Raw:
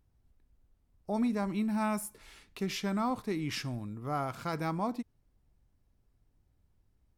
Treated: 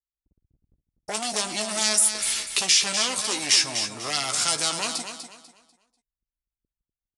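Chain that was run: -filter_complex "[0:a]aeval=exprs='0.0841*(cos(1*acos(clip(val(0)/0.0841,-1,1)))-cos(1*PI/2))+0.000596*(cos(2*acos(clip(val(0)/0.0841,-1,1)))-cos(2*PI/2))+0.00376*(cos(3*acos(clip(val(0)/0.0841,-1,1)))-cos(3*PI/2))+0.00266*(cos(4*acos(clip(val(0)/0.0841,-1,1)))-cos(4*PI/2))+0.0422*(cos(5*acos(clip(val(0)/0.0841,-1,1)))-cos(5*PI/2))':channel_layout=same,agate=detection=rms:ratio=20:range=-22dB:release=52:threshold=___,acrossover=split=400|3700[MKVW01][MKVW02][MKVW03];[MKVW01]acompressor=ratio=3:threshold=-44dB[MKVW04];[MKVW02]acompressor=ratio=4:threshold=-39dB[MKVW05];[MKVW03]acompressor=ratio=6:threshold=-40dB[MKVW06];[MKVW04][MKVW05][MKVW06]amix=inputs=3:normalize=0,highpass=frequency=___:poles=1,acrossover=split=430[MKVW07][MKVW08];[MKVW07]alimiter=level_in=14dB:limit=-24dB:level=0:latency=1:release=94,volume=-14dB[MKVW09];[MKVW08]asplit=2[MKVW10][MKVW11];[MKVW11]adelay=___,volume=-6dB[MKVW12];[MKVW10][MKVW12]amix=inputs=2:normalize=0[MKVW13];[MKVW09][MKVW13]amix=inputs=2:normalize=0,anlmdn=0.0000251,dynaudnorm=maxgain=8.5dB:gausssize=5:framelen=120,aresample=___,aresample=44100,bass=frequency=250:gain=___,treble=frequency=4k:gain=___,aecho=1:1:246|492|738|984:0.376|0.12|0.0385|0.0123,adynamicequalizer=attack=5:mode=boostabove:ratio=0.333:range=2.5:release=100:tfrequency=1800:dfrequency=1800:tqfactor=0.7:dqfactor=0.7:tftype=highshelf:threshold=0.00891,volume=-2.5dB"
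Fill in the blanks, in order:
-52dB, 54, 14, 22050, -8, 13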